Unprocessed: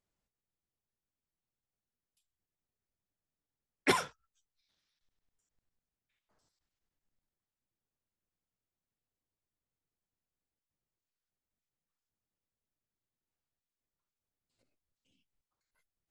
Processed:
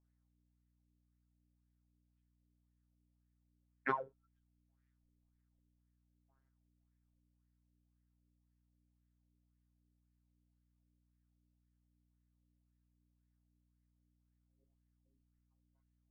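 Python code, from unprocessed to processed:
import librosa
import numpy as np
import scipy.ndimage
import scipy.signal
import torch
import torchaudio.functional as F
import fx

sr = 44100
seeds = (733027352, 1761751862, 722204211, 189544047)

y = fx.robotise(x, sr, hz=134.0)
y = fx.add_hum(y, sr, base_hz=60, snr_db=19)
y = fx.filter_lfo_lowpass(y, sr, shape='sine', hz=1.9, low_hz=420.0, high_hz=1900.0, q=4.7)
y = F.gain(torch.from_numpy(y), -9.0).numpy()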